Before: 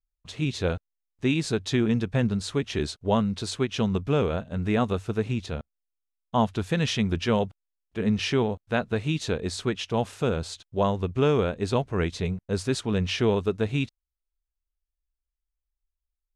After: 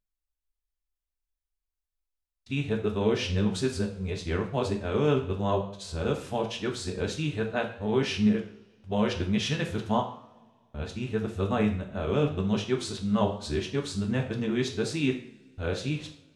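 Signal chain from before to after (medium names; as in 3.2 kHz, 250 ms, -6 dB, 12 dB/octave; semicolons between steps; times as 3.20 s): reverse the whole clip; two-slope reverb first 0.47 s, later 2.3 s, from -25 dB, DRR 2.5 dB; flange 0.87 Hz, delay 9.6 ms, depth 6.1 ms, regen +88%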